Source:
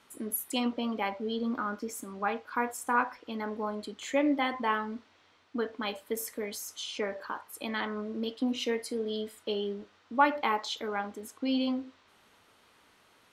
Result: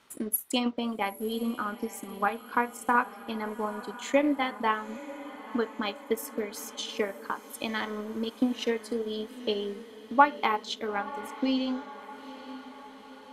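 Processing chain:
transient designer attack +6 dB, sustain −8 dB
feedback delay with all-pass diffusion 912 ms, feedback 59%, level −15.5 dB

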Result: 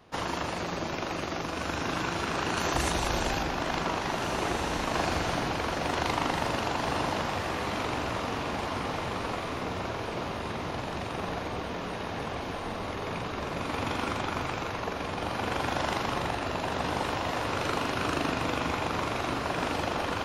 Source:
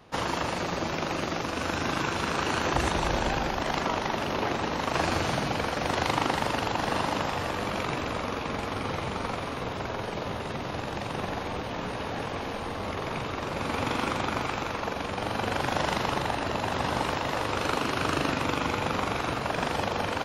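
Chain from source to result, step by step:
0:02.57–0:03.43: high-shelf EQ 5,900 Hz +11.5 dB
feedback delay with all-pass diffusion 1,713 ms, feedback 41%, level −6 dB
on a send at −12 dB: convolution reverb RT60 0.50 s, pre-delay 3 ms
on the sum: level −3 dB

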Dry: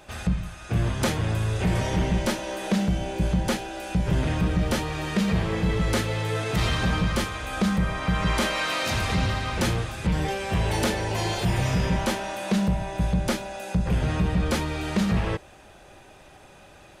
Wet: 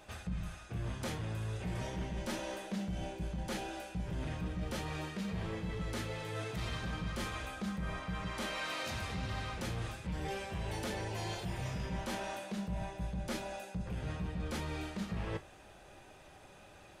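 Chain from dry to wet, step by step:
reversed playback
downward compressor, threshold −29 dBFS, peak gain reduction 11 dB
reversed playback
flanger 0.36 Hz, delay 9.4 ms, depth 9.6 ms, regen −59%
level −2.5 dB

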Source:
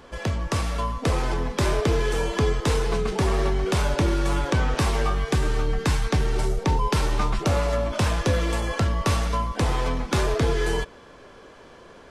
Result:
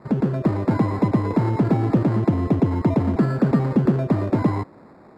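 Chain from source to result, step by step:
decimation without filtering 34×
resonant band-pass 110 Hz, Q 1.2
wrong playback speed 33 rpm record played at 78 rpm
level +8.5 dB

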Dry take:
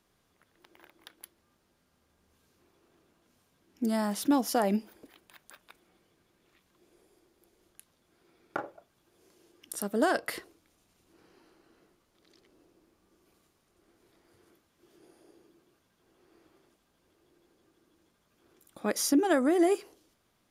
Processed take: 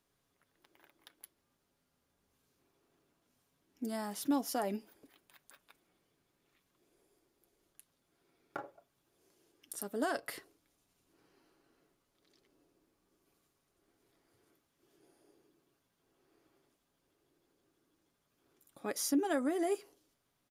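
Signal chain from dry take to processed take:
high-shelf EQ 7,900 Hz +4.5 dB
comb filter 7.2 ms, depth 33%
level −8.5 dB

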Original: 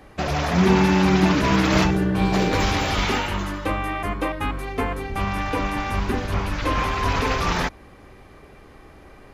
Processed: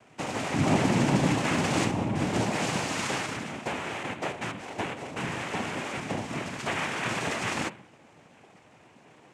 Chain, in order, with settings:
hum removal 128.2 Hz, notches 16
cochlear-implant simulation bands 4
level −6.5 dB

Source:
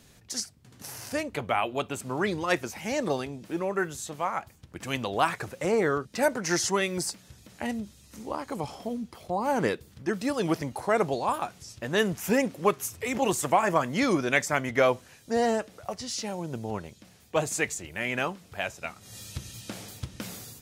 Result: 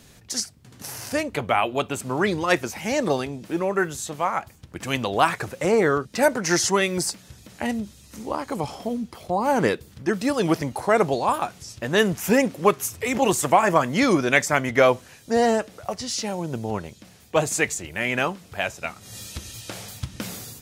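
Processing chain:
0:19.26–0:20.13: parametric band 100 Hz → 490 Hz −14.5 dB 0.52 octaves
level +5.5 dB

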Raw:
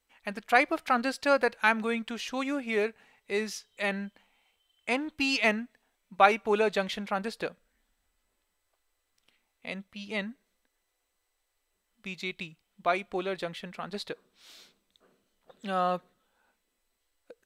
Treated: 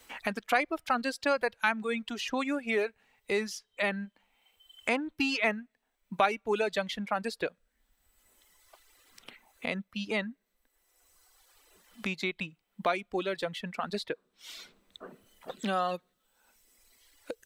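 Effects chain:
reverb reduction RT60 1.5 s
multiband upward and downward compressor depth 70%

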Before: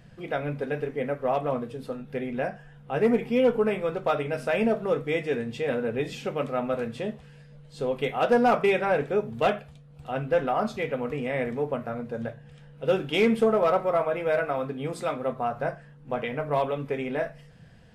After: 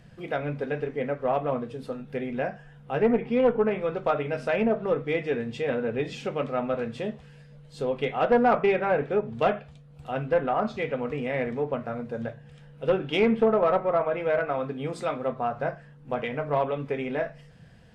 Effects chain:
treble cut that deepens with the level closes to 2,200 Hz, closed at −20 dBFS
harmonic generator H 2 −14 dB, 4 −26 dB, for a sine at −13 dBFS

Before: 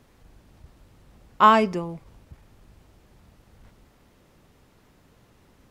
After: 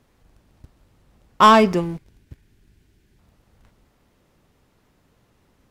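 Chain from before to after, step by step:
gain on a spectral selection 0:01.81–0:03.19, 440–1,400 Hz −10 dB
leveller curve on the samples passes 2

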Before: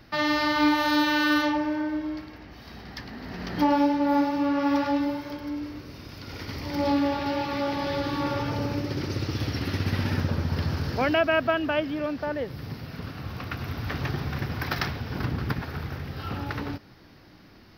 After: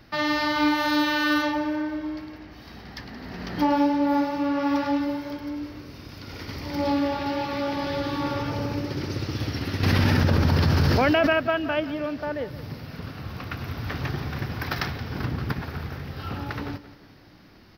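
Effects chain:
on a send: repeating echo 175 ms, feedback 42%, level −15.5 dB
0:09.83–0:11.33: on the sum: envelope flattener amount 100%

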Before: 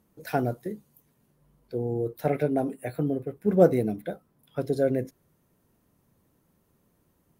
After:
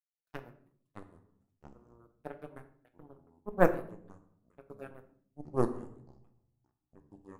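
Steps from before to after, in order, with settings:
low-shelf EQ 69 Hz −6.5 dB
power curve on the samples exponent 3
auto-filter notch sine 5.3 Hz 460–5,900 Hz
rectangular room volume 71 cubic metres, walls mixed, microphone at 0.32 metres
delay with pitch and tempo change per echo 473 ms, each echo −6 semitones, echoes 2, each echo −6 dB

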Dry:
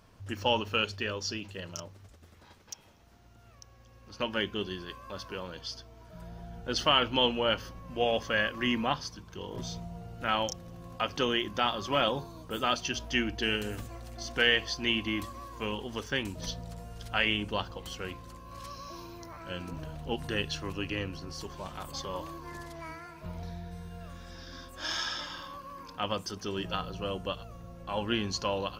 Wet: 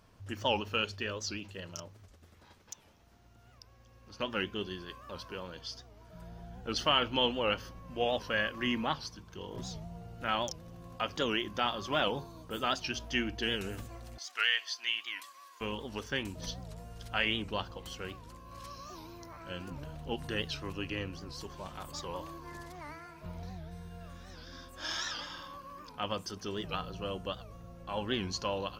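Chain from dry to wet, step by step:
0:14.18–0:15.61: high-pass filter 1,400 Hz 12 dB per octave
wow of a warped record 78 rpm, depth 160 cents
level −3 dB

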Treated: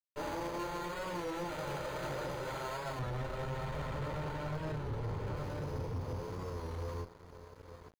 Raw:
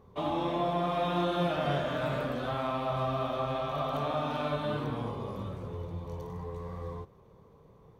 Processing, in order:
lower of the sound and its delayed copy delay 2.1 ms
decimation without filtering 8×
0:03.00–0:05.37: bass and treble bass +11 dB, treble −7 dB
single-tap delay 867 ms −10.5 dB
speech leveller within 5 dB 0.5 s
dead-zone distortion −47 dBFS
high-shelf EQ 5,700 Hz −10.5 dB
soft clipping −32 dBFS, distortion −11 dB
wow of a warped record 33 1/3 rpm, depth 100 cents
level −1 dB

